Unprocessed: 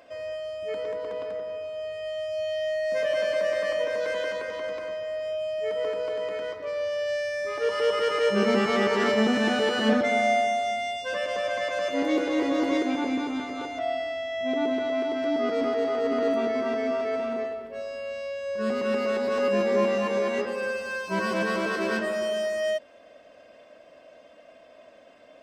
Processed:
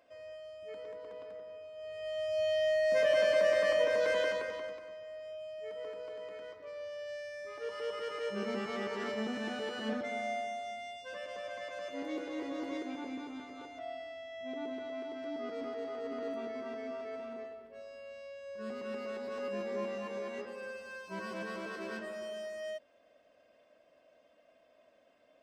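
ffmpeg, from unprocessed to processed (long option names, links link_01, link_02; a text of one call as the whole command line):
ffmpeg -i in.wav -af "volume=-1.5dB,afade=type=in:start_time=1.75:duration=0.71:silence=0.251189,afade=type=out:start_time=4.21:duration=0.6:silence=0.237137" out.wav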